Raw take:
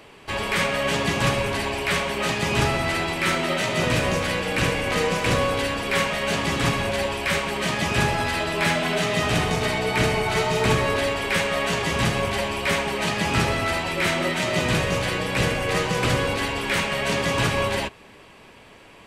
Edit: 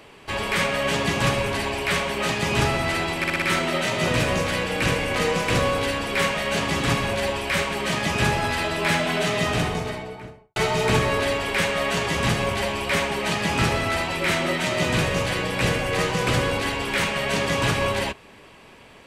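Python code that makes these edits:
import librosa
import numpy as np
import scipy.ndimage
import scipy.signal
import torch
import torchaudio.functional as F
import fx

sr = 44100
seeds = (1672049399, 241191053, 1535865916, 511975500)

y = fx.studio_fade_out(x, sr, start_s=9.11, length_s=1.21)
y = fx.edit(y, sr, fx.stutter(start_s=3.18, slice_s=0.06, count=5), tone=tone)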